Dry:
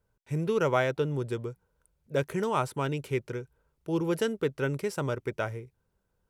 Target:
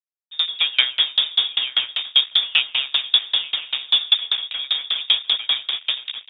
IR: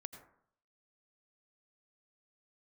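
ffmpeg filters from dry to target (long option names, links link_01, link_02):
-filter_complex "[0:a]asplit=9[link_01][link_02][link_03][link_04][link_05][link_06][link_07][link_08][link_09];[link_02]adelay=163,afreqshift=30,volume=-6dB[link_10];[link_03]adelay=326,afreqshift=60,volume=-10.6dB[link_11];[link_04]adelay=489,afreqshift=90,volume=-15.2dB[link_12];[link_05]adelay=652,afreqshift=120,volume=-19.7dB[link_13];[link_06]adelay=815,afreqshift=150,volume=-24.3dB[link_14];[link_07]adelay=978,afreqshift=180,volume=-28.9dB[link_15];[link_08]adelay=1141,afreqshift=210,volume=-33.5dB[link_16];[link_09]adelay=1304,afreqshift=240,volume=-38.1dB[link_17];[link_01][link_10][link_11][link_12][link_13][link_14][link_15][link_16][link_17]amix=inputs=9:normalize=0,acontrast=84,highshelf=frequency=2900:gain=-9.5,asplit=2[link_18][link_19];[link_19]aecho=0:1:890|1780|2670:0.531|0.0903|0.0153[link_20];[link_18][link_20]amix=inputs=2:normalize=0,dynaudnorm=framelen=100:gausssize=5:maxgain=8dB,lowshelf=frequency=210:gain=-4.5,afwtdn=0.0708,highpass=58,aresample=11025,acrusher=bits=3:mix=0:aa=0.5,aresample=44100,lowpass=frequency=3200:width_type=q:width=0.5098,lowpass=frequency=3200:width_type=q:width=0.6013,lowpass=frequency=3200:width_type=q:width=0.9,lowpass=frequency=3200:width_type=q:width=2.563,afreqshift=-3800,aeval=exprs='val(0)*pow(10,-30*if(lt(mod(5.1*n/s,1),2*abs(5.1)/1000),1-mod(5.1*n/s,1)/(2*abs(5.1)/1000),(mod(5.1*n/s,1)-2*abs(5.1)/1000)/(1-2*abs(5.1)/1000))/20)':channel_layout=same,volume=3dB"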